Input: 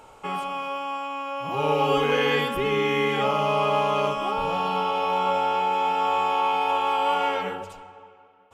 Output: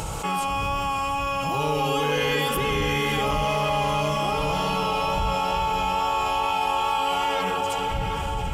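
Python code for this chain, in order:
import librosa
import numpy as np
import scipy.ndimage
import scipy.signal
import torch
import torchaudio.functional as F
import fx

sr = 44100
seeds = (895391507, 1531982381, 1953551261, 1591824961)

y = fx.dmg_wind(x, sr, seeds[0], corner_hz=93.0, level_db=-38.0)
y = scipy.signal.sosfilt(scipy.signal.butter(2, 44.0, 'highpass', fs=sr, output='sos'), y)
y = fx.bass_treble(y, sr, bass_db=0, treble_db=12)
y = y + 0.33 * np.pad(y, (int(6.1 * sr / 1000.0), 0))[:len(y)]
y = fx.echo_alternate(y, sr, ms=367, hz=1300.0, feedback_pct=57, wet_db=-10.5)
y = fx.wow_flutter(y, sr, seeds[1], rate_hz=2.1, depth_cents=16.0)
y = fx.low_shelf(y, sr, hz=93.0, db=9.0)
y = fx.echo_diffused(y, sr, ms=590, feedback_pct=44, wet_db=-10)
y = fx.env_flatten(y, sr, amount_pct=70)
y = y * 10.0 ** (-4.5 / 20.0)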